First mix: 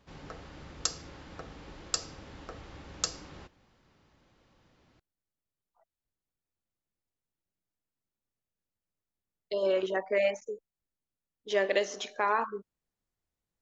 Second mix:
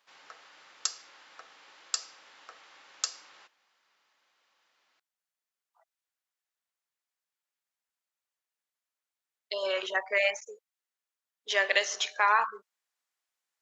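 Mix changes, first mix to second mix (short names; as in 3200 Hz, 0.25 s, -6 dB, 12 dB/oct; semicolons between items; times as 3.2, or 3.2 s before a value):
speech +8.0 dB; master: add HPF 1100 Hz 12 dB/oct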